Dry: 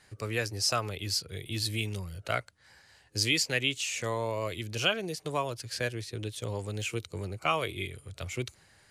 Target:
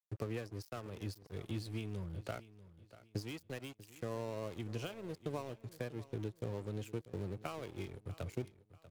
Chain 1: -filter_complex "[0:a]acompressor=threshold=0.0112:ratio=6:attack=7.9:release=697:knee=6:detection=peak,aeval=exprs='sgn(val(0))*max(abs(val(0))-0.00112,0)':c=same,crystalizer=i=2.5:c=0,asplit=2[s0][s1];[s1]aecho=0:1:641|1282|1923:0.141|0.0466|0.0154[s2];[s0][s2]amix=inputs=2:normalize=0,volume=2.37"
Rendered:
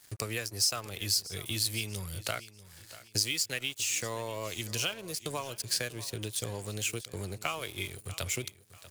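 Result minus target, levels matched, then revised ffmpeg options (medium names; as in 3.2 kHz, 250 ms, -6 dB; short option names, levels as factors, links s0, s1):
250 Hz band -10.5 dB
-filter_complex "[0:a]acompressor=threshold=0.0112:ratio=6:attack=7.9:release=697:knee=6:detection=peak,bandpass=f=220:t=q:w=0.52:csg=0,aeval=exprs='sgn(val(0))*max(abs(val(0))-0.00112,0)':c=same,crystalizer=i=2.5:c=0,asplit=2[s0][s1];[s1]aecho=0:1:641|1282|1923:0.141|0.0466|0.0154[s2];[s0][s2]amix=inputs=2:normalize=0,volume=2.37"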